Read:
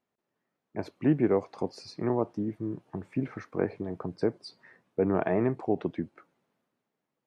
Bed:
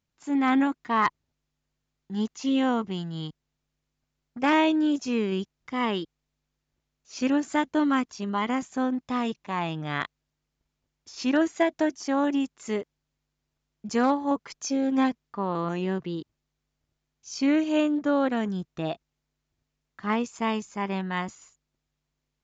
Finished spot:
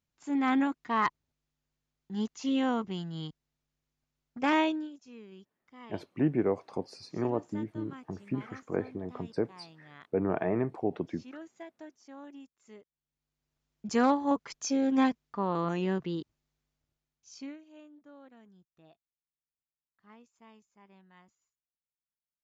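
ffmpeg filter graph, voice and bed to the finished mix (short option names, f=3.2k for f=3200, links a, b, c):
-filter_complex "[0:a]adelay=5150,volume=-3dB[a];[1:a]volume=16.5dB,afade=t=out:st=4.61:d=0.29:silence=0.11885,afade=t=in:st=12.9:d=0.77:silence=0.0891251,afade=t=out:st=16.55:d=1.03:silence=0.0421697[b];[a][b]amix=inputs=2:normalize=0"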